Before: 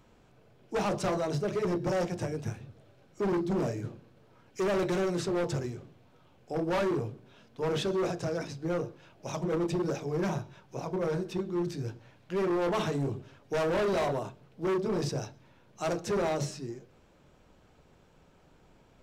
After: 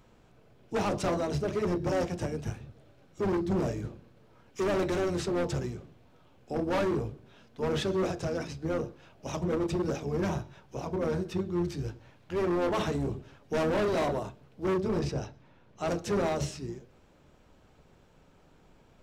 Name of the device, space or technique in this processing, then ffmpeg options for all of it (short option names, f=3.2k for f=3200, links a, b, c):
octave pedal: -filter_complex "[0:a]asettb=1/sr,asplit=3[a][b][c];[a]atrim=end=14.994[d];[b]atrim=start=14.99:end=15.88,asetpts=PTS-STARTPTS,afade=t=in:d=0.004:c=qsin,afade=t=out:st=0.886:d=0.004:c=qsin,highshelf=f=6.4k:g=-11.5[e];[c]atrim=start=15.876[f];[d][e]acrossfade=d=0.004:c1=hsin:c2=qsin[g];[g][f]acrossfade=d=0.004:c1=qsin:c2=hsin,asplit=2[h][i];[i]asetrate=22050,aresample=44100,atempo=2,volume=-8dB[j];[h][j]amix=inputs=2:normalize=0"